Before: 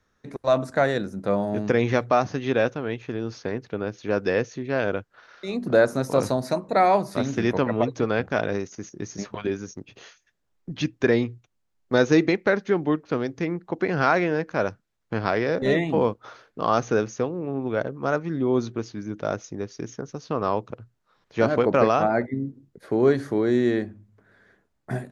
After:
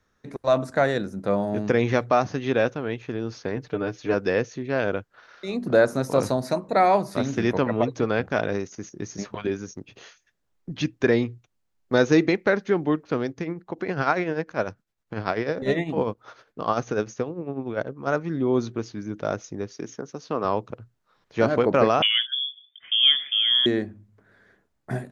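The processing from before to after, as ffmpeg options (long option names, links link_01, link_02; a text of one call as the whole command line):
ffmpeg -i in.wav -filter_complex "[0:a]asettb=1/sr,asplit=3[link_01][link_02][link_03];[link_01]atrim=end=3.564[link_04];[link_02]atrim=start=3.56:end=4.14,asetpts=PTS-STARTPTS,afade=type=in:duration=0.004:curve=qsin,afade=type=out:start_time=0.576:duration=0.004:curve=qsin,aecho=1:1:6.7:0.81,atrim=end_sample=25578[link_05];[link_03]atrim=start=4.136[link_06];[link_04][link_05]acrossfade=duration=0.004:curve1=hsin:curve2=qsin[link_07];[link_07][link_06]acrossfade=duration=0.004:curve1=qsin:curve2=hsin,asplit=3[link_08][link_09][link_10];[link_08]afade=type=out:start_time=13.31:duration=0.02[link_11];[link_09]tremolo=f=10:d=0.64,afade=type=in:start_time=13.31:duration=0.02,afade=type=out:start_time=18.06:duration=0.02[link_12];[link_10]afade=type=in:start_time=18.06:duration=0.02[link_13];[link_11][link_12][link_13]amix=inputs=3:normalize=0,asettb=1/sr,asplit=3[link_14][link_15][link_16];[link_14]atrim=end=19.744[link_17];[link_15]atrim=start=19.74:end=20.45,asetpts=PTS-STARTPTS,afade=type=in:duration=0.004:curve=qsin,afade=type=out:start_time=0.706:duration=0.004:curve=qsin,highpass=180[link_18];[link_16]atrim=start=20.446[link_19];[link_17][link_18]acrossfade=duration=0.004:curve1=hsin:curve2=qsin[link_20];[link_20][link_19]acrossfade=duration=0.004:curve1=qsin:curve2=hsin,asettb=1/sr,asplit=3[link_21][link_22][link_23];[link_21]atrim=end=22.024[link_24];[link_22]atrim=start=22.02:end=23.66,asetpts=PTS-STARTPTS,afade=type=in:duration=0.004:curve=qsin,afade=type=out:start_time=1.636:duration=0.004:curve=qsin,lowpass=frequency=3100:width_type=q:width=0.5098,lowpass=frequency=3100:width_type=q:width=0.6013,lowpass=frequency=3100:width_type=q:width=0.9,lowpass=frequency=3100:width_type=q:width=2.563,afreqshift=-3600[link_25];[link_23]atrim=start=23.656[link_26];[link_24][link_25]acrossfade=duration=0.004:curve1=hsin:curve2=qsin[link_27];[link_27][link_26]acrossfade=duration=0.004:curve1=qsin:curve2=hsin" out.wav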